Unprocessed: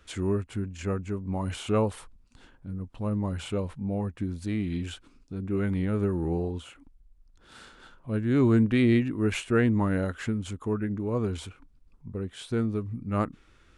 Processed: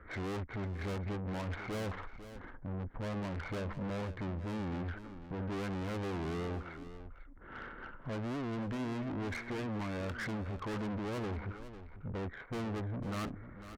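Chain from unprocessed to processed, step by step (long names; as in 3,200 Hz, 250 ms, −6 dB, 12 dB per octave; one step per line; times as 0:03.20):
Chebyshev low-pass filter 2,200 Hz, order 8
0:08.14–0:10.29: downward compressor 8 to 1, threshold −29 dBFS, peak gain reduction 11 dB
tube saturation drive 45 dB, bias 0.55
single-tap delay 498 ms −12.5 dB
level +8.5 dB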